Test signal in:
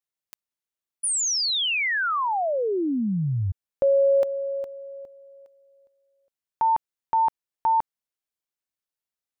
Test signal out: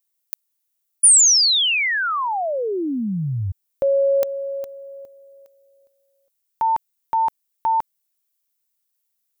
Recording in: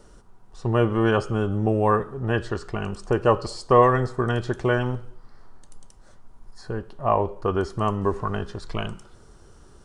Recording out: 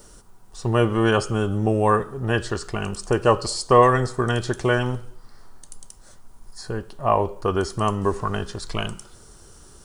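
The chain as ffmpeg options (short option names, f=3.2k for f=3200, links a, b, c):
-af "aemphasis=mode=production:type=75kf,volume=1dB"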